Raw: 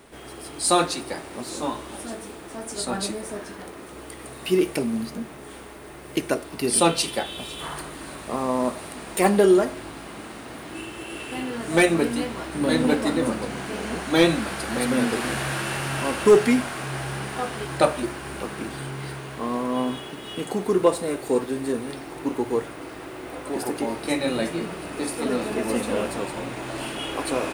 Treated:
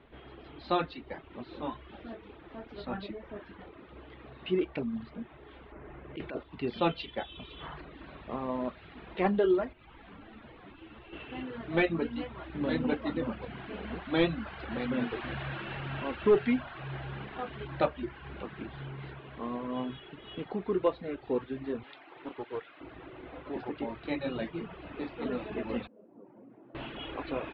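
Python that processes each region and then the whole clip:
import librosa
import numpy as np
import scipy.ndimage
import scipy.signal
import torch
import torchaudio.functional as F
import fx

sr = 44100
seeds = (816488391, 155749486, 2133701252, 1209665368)

y = fx.chain(x, sr, fx.env_lowpass(base_hz=1700.0, full_db=-19.5),
    fx.over_compress(threshold_db=-27.0, ratio=-1.0), at=(5.72, 6.43))
y = fx.chain(y, sr, fx.schmitt(flips_db=-47.5),
    fx.air_absorb(metres=140.0),
    fx.ensemble(), at=(9.73, 11.13))
y = fx.chain(y, sr, fx.highpass(hz=420.0, slope=6),
    fx.tilt_eq(slope=1.5),
    fx.doppler_dist(depth_ms=0.21), at=(21.83, 22.81))
y = fx.chain(y, sr, fx.ladder_bandpass(hz=270.0, resonance_pct=35),
    fx.tilt_eq(slope=2.5),
    fx.env_flatten(amount_pct=50), at=(25.87, 26.75))
y = scipy.signal.sosfilt(scipy.signal.butter(8, 3700.0, 'lowpass', fs=sr, output='sos'), y)
y = fx.dereverb_blind(y, sr, rt60_s=0.77)
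y = fx.low_shelf(y, sr, hz=110.0, db=9.5)
y = F.gain(torch.from_numpy(y), -9.0).numpy()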